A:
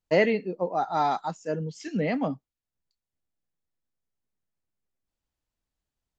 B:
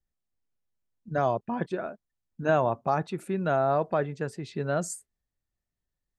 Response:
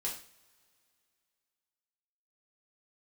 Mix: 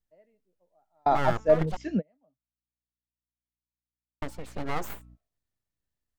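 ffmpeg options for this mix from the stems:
-filter_complex "[0:a]lowpass=frequency=1500:poles=1,equalizer=frequency=620:width_type=o:width=0.24:gain=12,aeval=exprs='val(0)+0.00224*(sin(2*PI*60*n/s)+sin(2*PI*2*60*n/s)/2+sin(2*PI*3*60*n/s)/3+sin(2*PI*4*60*n/s)/4+sin(2*PI*5*60*n/s)/5)':channel_layout=same,volume=2.5dB[link_01];[1:a]bandreject=frequency=219.1:width_type=h:width=4,bandreject=frequency=438.2:width_type=h:width=4,bandreject=frequency=657.3:width_type=h:width=4,bandreject=frequency=876.4:width_type=h:width=4,aeval=exprs='abs(val(0))':channel_layout=same,volume=-0.5dB,asplit=3[link_02][link_03][link_04];[link_02]atrim=end=1.77,asetpts=PTS-STARTPTS,afade=type=out:start_time=1.766:duration=0.004:curve=hsin[link_05];[link_03]atrim=start=1.77:end=4.22,asetpts=PTS-STARTPTS,volume=0[link_06];[link_04]atrim=start=4.22,asetpts=PTS-STARTPTS,afade=type=in:duration=0.004:curve=hsin[link_07];[link_05][link_06][link_07]concat=n=3:v=0:a=1,asplit=2[link_08][link_09];[link_09]apad=whole_len=272688[link_10];[link_01][link_10]sidechaingate=range=-47dB:threshold=-60dB:ratio=16:detection=peak[link_11];[link_11][link_08]amix=inputs=2:normalize=0"

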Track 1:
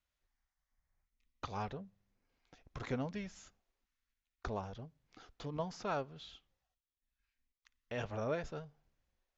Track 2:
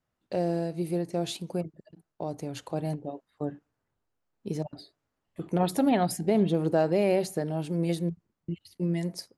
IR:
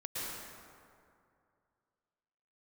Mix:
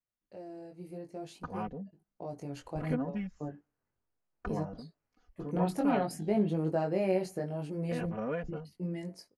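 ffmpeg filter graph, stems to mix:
-filter_complex "[0:a]afwtdn=0.00398,equalizer=frequency=160:width_type=o:width=1.1:gain=6.5,aecho=1:1:4.1:0.82,volume=-1dB[link_01];[1:a]flanger=delay=19:depth=2.5:speed=0.62,highshelf=frequency=6700:gain=-7.5,dynaudnorm=framelen=290:gausssize=5:maxgain=7dB,volume=-9.5dB,afade=type=in:start_time=1.86:duration=0.58:silence=0.473151[link_02];[link_01][link_02]amix=inputs=2:normalize=0,equalizer=frequency=3600:width=6:gain=-10"

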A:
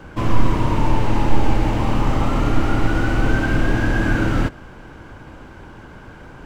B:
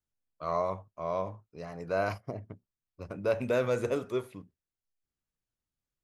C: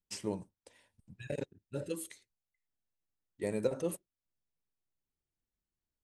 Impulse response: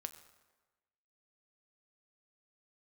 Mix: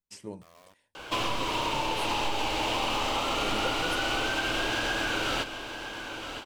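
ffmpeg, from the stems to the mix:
-filter_complex "[0:a]acrossover=split=400 3000:gain=0.112 1 0.126[link_01][link_02][link_03];[link_01][link_02][link_03]amix=inputs=3:normalize=0,acompressor=threshold=-28dB:ratio=6,aexciter=amount=10.9:drive=4.6:freq=2800,adelay=950,volume=1dB,asplit=2[link_04][link_05];[link_05]volume=-10.5dB[link_06];[1:a]acompressor=threshold=-38dB:ratio=3,acrusher=bits=5:mix=0:aa=0.000001,volume=-18.5dB[link_07];[2:a]volume=-4dB[link_08];[link_06]aecho=0:1:968:1[link_09];[link_04][link_07][link_08][link_09]amix=inputs=4:normalize=0"

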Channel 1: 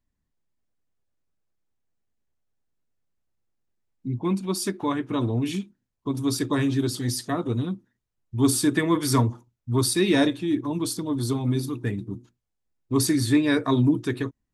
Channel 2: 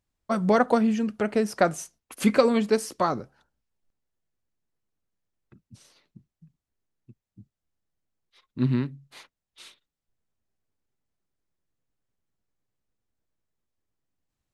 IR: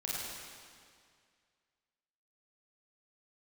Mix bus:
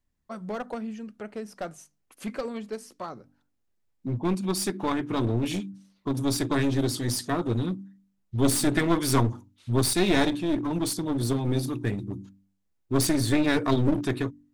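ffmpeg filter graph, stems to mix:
-filter_complex "[0:a]volume=1dB[link_01];[1:a]volume=-12dB[link_02];[link_01][link_02]amix=inputs=2:normalize=0,bandreject=frequency=48.64:width_type=h:width=4,bandreject=frequency=97.28:width_type=h:width=4,bandreject=frequency=145.92:width_type=h:width=4,bandreject=frequency=194.56:width_type=h:width=4,bandreject=frequency=243.2:width_type=h:width=4,bandreject=frequency=291.84:width_type=h:width=4,aeval=exprs='clip(val(0),-1,0.0447)':channel_layout=same"

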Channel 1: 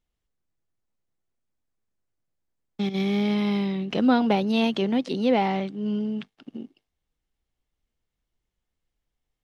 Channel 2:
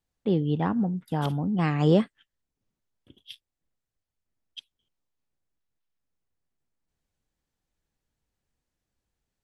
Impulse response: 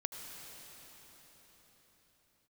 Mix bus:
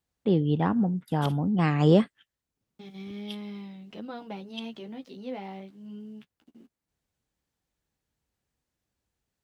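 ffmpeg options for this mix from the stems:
-filter_complex "[0:a]aeval=exprs='val(0)*gte(abs(val(0)),0.00447)':channel_layout=same,flanger=delay=9.1:depth=6.8:regen=-19:speed=0.27:shape=sinusoidal,volume=-13dB[link_01];[1:a]highpass=47,volume=1dB[link_02];[link_01][link_02]amix=inputs=2:normalize=0"

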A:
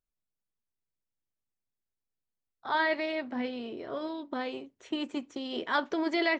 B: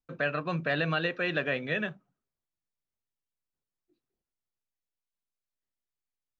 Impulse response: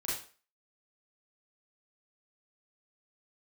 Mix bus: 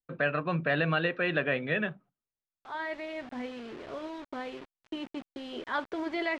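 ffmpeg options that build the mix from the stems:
-filter_complex "[0:a]asubboost=boost=2.5:cutoff=99,acrusher=bits=6:mix=0:aa=0.000001,volume=-3dB[link_01];[1:a]agate=range=-11dB:threshold=-57dB:ratio=16:detection=peak,volume=1.5dB,asplit=2[link_02][link_03];[link_03]apad=whole_len=282108[link_04];[link_01][link_04]sidechaincompress=threshold=-38dB:ratio=8:attack=7.2:release=1350[link_05];[link_05][link_02]amix=inputs=2:normalize=0,lowpass=3200"

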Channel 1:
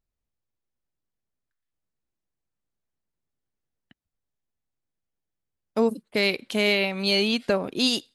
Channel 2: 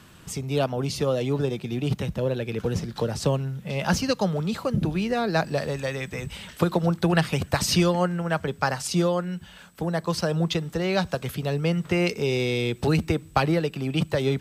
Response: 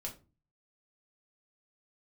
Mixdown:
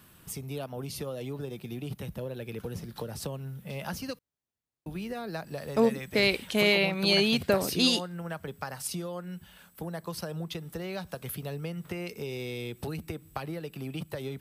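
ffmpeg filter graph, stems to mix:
-filter_complex "[0:a]highpass=53,volume=-1.5dB[link_01];[1:a]acompressor=threshold=-25dB:ratio=6,aexciter=amount=4.2:drive=5.6:freq=9500,volume=-7.5dB,asplit=3[link_02][link_03][link_04];[link_02]atrim=end=4.19,asetpts=PTS-STARTPTS,afade=type=out:start_time=4.186:duration=0.004:curve=hsin[link_05];[link_03]atrim=start=4.19:end=4.86,asetpts=PTS-STARTPTS,volume=0[link_06];[link_04]atrim=start=4.86,asetpts=PTS-STARTPTS,afade=type=in:duration=0.004:curve=hsin[link_07];[link_05][link_06][link_07]concat=n=3:v=0:a=1[link_08];[link_01][link_08]amix=inputs=2:normalize=0"

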